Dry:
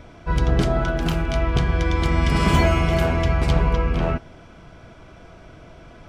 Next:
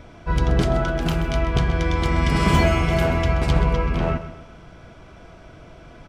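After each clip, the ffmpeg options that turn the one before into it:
ffmpeg -i in.wav -af "aecho=1:1:129|258|387|516:0.224|0.094|0.0395|0.0166" out.wav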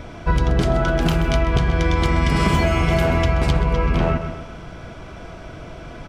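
ffmpeg -i in.wav -af "acompressor=threshold=-22dB:ratio=6,volume=8dB" out.wav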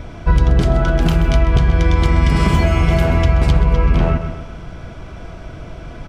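ffmpeg -i in.wav -af "lowshelf=frequency=140:gain=7.5" out.wav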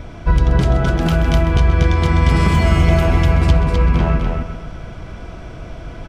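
ffmpeg -i in.wav -af "aecho=1:1:254:0.596,volume=-1dB" out.wav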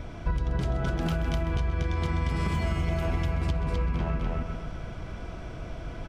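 ffmpeg -i in.wav -af "acompressor=threshold=-18dB:ratio=6,volume=-6dB" out.wav

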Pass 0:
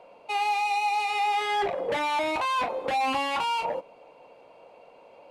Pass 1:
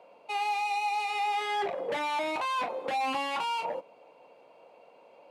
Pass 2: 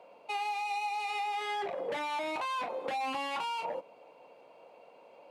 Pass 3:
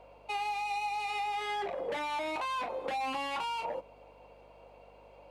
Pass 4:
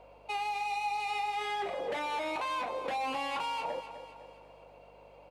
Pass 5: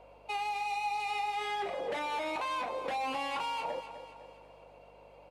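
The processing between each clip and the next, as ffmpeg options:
ffmpeg -i in.wav -af "highpass=150,volume=-4dB" out.wav
ffmpeg -i in.wav -af "acompressor=threshold=-32dB:ratio=6" out.wav
ffmpeg -i in.wav -af "aeval=exprs='val(0)+0.000708*(sin(2*PI*50*n/s)+sin(2*PI*2*50*n/s)/2+sin(2*PI*3*50*n/s)/3+sin(2*PI*4*50*n/s)/4+sin(2*PI*5*50*n/s)/5)':channel_layout=same" out.wav
ffmpeg -i in.wav -af "aecho=1:1:253|506|759|1012|1265:0.282|0.132|0.0623|0.0293|0.0138" out.wav
ffmpeg -i in.wav -ar 32000 -c:a libmp3lame -b:a 64k out.mp3

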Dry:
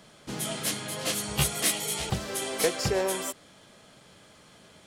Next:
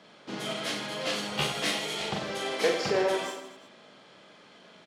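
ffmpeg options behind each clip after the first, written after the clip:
ffmpeg -i in.wav -filter_complex "[0:a]acrossover=split=180 5300:gain=0.1 1 0.0891[link_01][link_02][link_03];[link_01][link_02][link_03]amix=inputs=3:normalize=0,aecho=1:1:40|92|159.6|247.5|361.7:0.631|0.398|0.251|0.158|0.1" out.wav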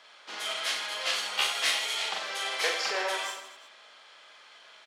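ffmpeg -i in.wav -af "highpass=1000,volume=3.5dB" out.wav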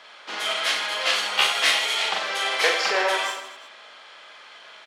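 ffmpeg -i in.wav -af "bass=frequency=250:gain=1,treble=frequency=4000:gain=-5,volume=8.5dB" out.wav

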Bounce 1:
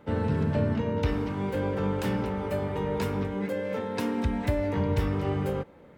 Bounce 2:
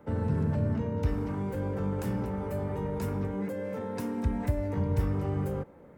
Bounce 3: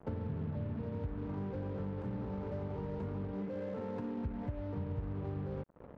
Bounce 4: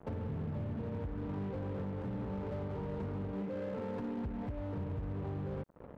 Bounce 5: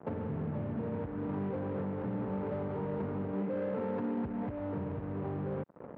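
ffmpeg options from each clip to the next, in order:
ffmpeg -i in.wav -filter_complex "[0:a]equalizer=frequency=3500:width=0.92:gain=-11,acrossover=split=190|3500[link_01][link_02][link_03];[link_02]alimiter=level_in=5.5dB:limit=-24dB:level=0:latency=1:release=20,volume=-5.5dB[link_04];[link_01][link_04][link_03]amix=inputs=3:normalize=0" out.wav
ffmpeg -i in.wav -af "acompressor=threshold=-39dB:ratio=5,acrusher=bits=7:mix=0:aa=0.5,adynamicsmooth=sensitivity=5.5:basefreq=770,volume=2.5dB" out.wav
ffmpeg -i in.wav -af "asoftclip=type=hard:threshold=-35.5dB,volume=1.5dB" out.wav
ffmpeg -i in.wav -af "highpass=140,lowpass=2200,volume=5dB" out.wav

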